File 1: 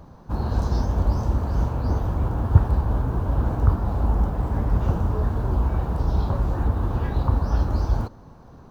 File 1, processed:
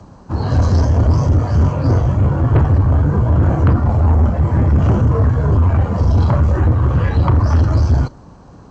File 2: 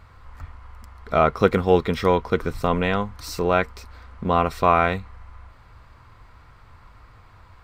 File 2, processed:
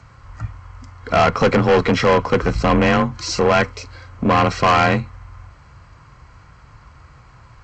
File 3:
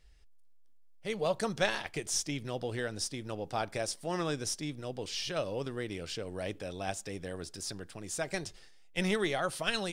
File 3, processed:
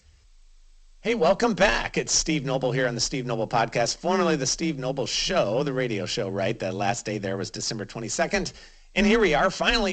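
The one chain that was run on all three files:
spectral noise reduction 8 dB; frequency shift +26 Hz; valve stage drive 22 dB, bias 0.3; Butterworth band-stop 3.6 kHz, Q 7.6; G.722 64 kbps 16 kHz; peak normalisation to -6 dBFS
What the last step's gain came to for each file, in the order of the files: +14.0 dB, +12.0 dB, +12.5 dB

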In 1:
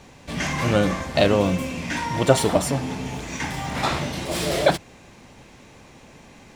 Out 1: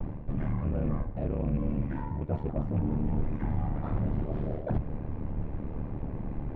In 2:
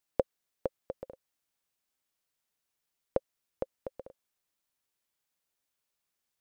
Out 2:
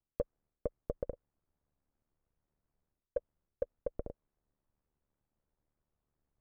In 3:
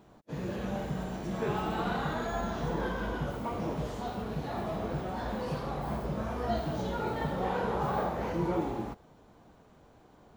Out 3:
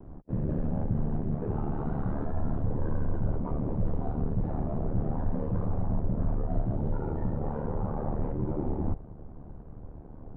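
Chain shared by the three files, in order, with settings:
rattle on loud lows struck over -22 dBFS, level -14 dBFS; short-mantissa float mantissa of 2-bit; reverse; compression 16:1, threshold -37 dBFS; reverse; ring modulator 37 Hz; tilt EQ -4.5 dB/octave; in parallel at -3 dB: overload inside the chain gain 30 dB; on the sum: vibrato 0.41 Hz 13 cents; low-pass 1.5 kHz 12 dB/octave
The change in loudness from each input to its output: -10.0 LU, -3.0 LU, +1.5 LU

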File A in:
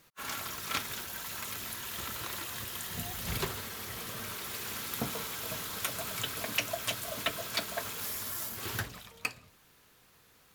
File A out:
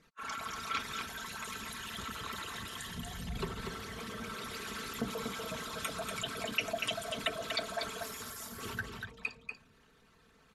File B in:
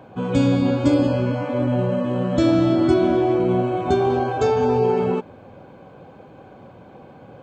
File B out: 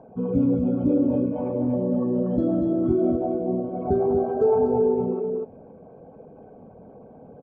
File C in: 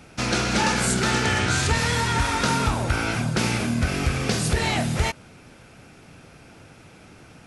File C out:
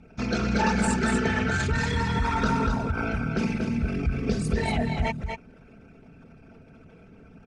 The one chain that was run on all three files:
resonances exaggerated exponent 2; low-pass 10 kHz 24 dB/octave; comb 4.5 ms, depth 48%; on a send: delay 240 ms -5.5 dB; on the sum: trim -3.5 dB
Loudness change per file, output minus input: -3.0 LU, -3.5 LU, -3.5 LU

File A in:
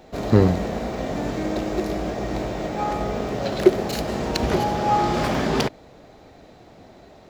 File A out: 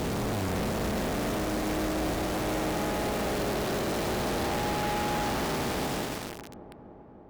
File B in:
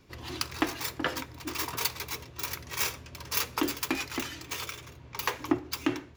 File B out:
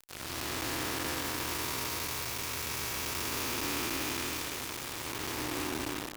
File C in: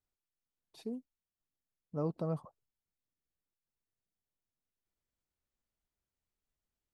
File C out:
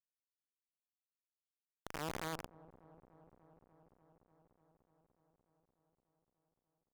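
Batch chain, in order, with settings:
spectral blur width 862 ms; companded quantiser 2-bit; on a send: feedback echo behind a low-pass 295 ms, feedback 80%, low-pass 750 Hz, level -12.5 dB; on the sum: Chebyshev shaper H 7 -25 dB, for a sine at -18.5 dBFS; trim -4.5 dB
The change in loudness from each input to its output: -6.5 LU, -1.0 LU, -4.5 LU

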